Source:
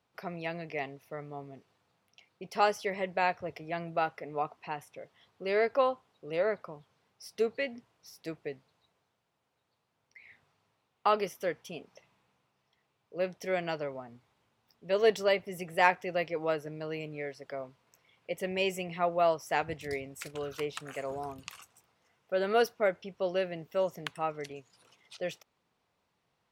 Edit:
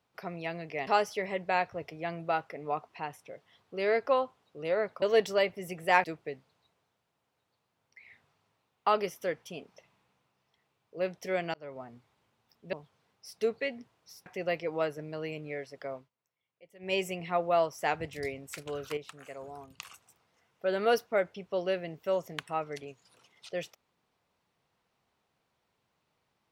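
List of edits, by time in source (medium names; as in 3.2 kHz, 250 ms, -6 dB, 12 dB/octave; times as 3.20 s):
0.87–2.55 s: delete
6.70–8.23 s: swap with 14.92–15.94 s
13.73–14.02 s: fade in
17.64–18.61 s: dip -21 dB, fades 0.14 s
20.65–21.48 s: gain -7 dB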